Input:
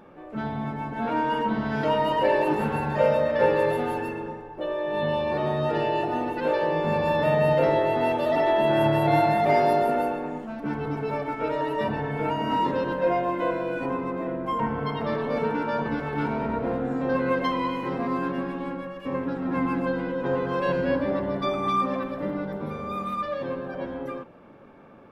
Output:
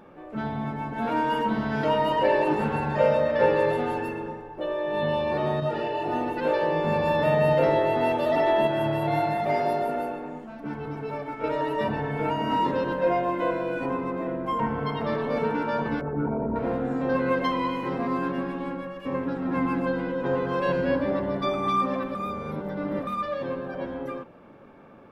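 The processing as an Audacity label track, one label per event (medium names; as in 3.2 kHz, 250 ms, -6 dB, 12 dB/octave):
0.980000	1.650000	treble shelf 7.2 kHz +9 dB
2.160000	4.040000	low-pass 8.9 kHz
5.600000	6.060000	detune thickener each way 19 cents
8.670000	11.440000	flange 1.6 Hz, delay 6.4 ms, depth 3.2 ms, regen -78%
16.010000	16.560000	resonances exaggerated exponent 2
22.150000	23.070000	reverse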